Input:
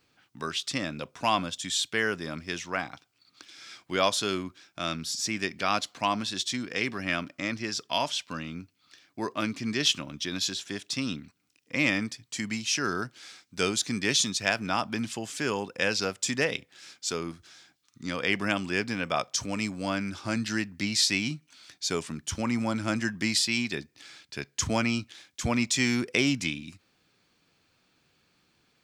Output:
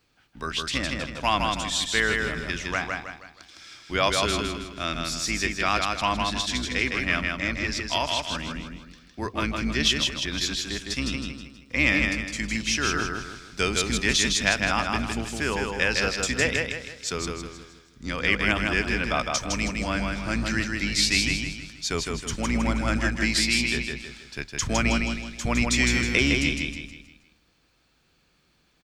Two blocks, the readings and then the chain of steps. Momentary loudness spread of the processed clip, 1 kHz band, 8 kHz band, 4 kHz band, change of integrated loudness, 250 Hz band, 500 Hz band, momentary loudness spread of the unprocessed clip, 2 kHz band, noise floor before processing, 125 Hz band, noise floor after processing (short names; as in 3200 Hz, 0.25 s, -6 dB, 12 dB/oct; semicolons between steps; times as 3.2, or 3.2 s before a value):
12 LU, +3.5 dB, +2.5 dB, +3.5 dB, +4.0 dB, +2.0 dB, +2.5 dB, 12 LU, +6.0 dB, -70 dBFS, +5.5 dB, -65 dBFS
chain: octaver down 2 oct, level -1 dB; dynamic EQ 2000 Hz, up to +5 dB, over -42 dBFS, Q 1; feedback echo 0.159 s, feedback 40%, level -3.5 dB